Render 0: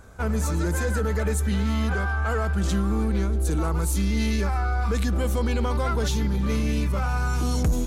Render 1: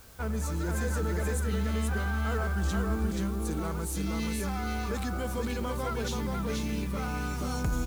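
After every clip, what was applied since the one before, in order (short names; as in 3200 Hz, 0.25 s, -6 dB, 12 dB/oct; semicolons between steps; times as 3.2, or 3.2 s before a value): added noise white -49 dBFS; on a send: echo 0.48 s -3.5 dB; on the sum: gain -7 dB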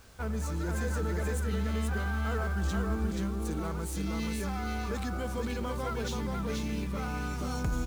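median filter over 3 samples; gain -1.5 dB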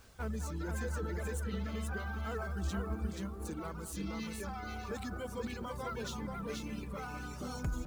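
reverb removal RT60 1.7 s; on a send: analogue delay 0.205 s, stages 2048, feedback 70%, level -13.5 dB; on the sum: gain -3.5 dB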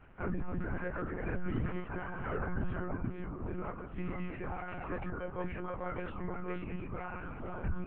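steep low-pass 2700 Hz 48 dB/oct; chorus 1 Hz, delay 19 ms, depth 8 ms; monotone LPC vocoder at 8 kHz 180 Hz; gain +5 dB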